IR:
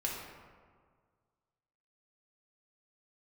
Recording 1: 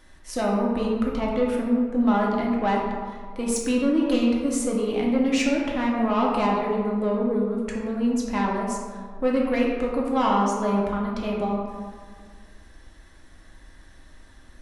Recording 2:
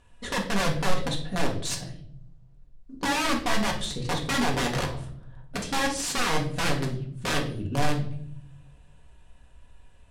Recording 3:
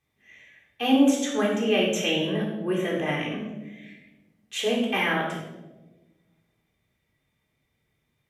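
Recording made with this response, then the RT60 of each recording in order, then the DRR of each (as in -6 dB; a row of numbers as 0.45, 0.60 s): 1; 1.8, 0.65, 1.1 s; -3.0, -0.5, -4.0 dB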